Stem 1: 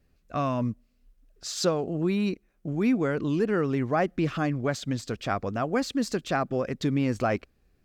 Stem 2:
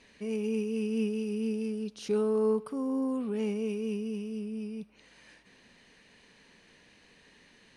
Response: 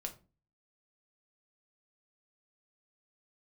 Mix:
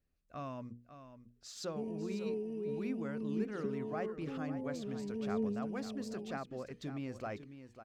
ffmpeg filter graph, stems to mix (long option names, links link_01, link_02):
-filter_complex "[0:a]bandreject=frequency=60:width_type=h:width=6,bandreject=frequency=120:width_type=h:width=6,bandreject=frequency=180:width_type=h:width=6,bandreject=frequency=240:width_type=h:width=6,bandreject=frequency=300:width_type=h:width=6,bandreject=frequency=360:width_type=h:width=6,bandreject=frequency=420:width_type=h:width=6,bandreject=frequency=480:width_type=h:width=6,volume=-15.5dB,asplit=2[link_01][link_02];[link_02]volume=-11.5dB[link_03];[1:a]afwtdn=0.02,acompressor=threshold=-32dB:ratio=6,aphaser=in_gain=1:out_gain=1:delay=2.8:decay=0.54:speed=0.52:type=triangular,adelay=1550,volume=-4.5dB[link_04];[link_03]aecho=0:1:548:1[link_05];[link_01][link_04][link_05]amix=inputs=3:normalize=0"